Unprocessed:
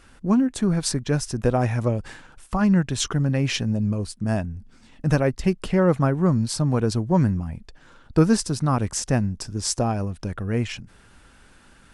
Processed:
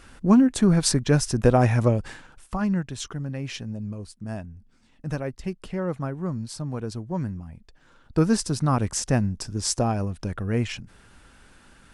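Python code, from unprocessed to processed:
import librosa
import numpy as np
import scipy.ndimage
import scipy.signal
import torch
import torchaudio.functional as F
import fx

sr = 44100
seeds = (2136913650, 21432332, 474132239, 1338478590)

y = fx.gain(x, sr, db=fx.line((1.83, 3.0), (3.06, -9.5), (7.53, -9.5), (8.53, -0.5)))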